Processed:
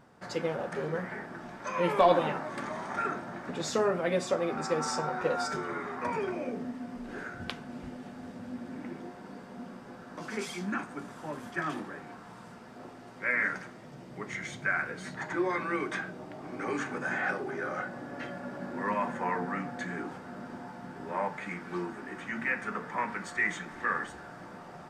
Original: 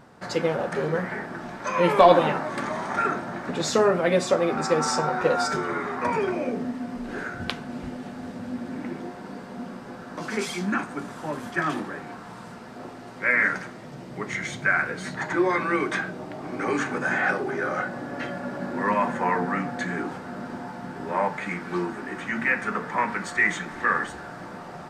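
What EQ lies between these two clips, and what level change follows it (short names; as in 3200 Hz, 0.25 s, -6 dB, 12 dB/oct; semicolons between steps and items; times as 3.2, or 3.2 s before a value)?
notch 4100 Hz, Q 23; -7.5 dB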